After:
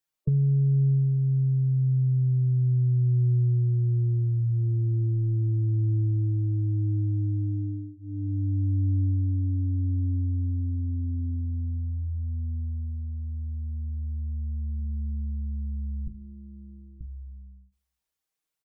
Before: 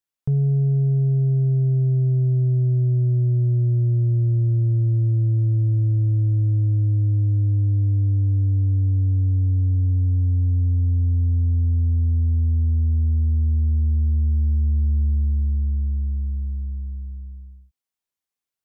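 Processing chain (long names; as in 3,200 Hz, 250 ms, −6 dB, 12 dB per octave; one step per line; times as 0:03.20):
0:16.07–0:17.01: Bessel high-pass filter 170 Hz, order 2
gate on every frequency bin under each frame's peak −30 dB strong
mains-hum notches 50/100/150/200/250/300/350 Hz
comb filter 6.4 ms, depth 78%
dynamic equaliser 580 Hz, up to +3 dB, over −40 dBFS, Q 1.3
downward compressor, threshold −22 dBFS, peak gain reduction 8.5 dB
repeating echo 73 ms, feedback 60%, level −22 dB
on a send at −24 dB: convolution reverb RT60 0.45 s, pre-delay 5 ms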